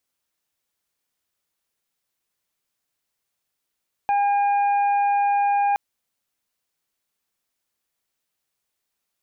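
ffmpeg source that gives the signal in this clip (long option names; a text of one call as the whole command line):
ffmpeg -f lavfi -i "aevalsrc='0.141*sin(2*PI*810*t)+0.0178*sin(2*PI*1620*t)+0.0188*sin(2*PI*2430*t)':duration=1.67:sample_rate=44100" out.wav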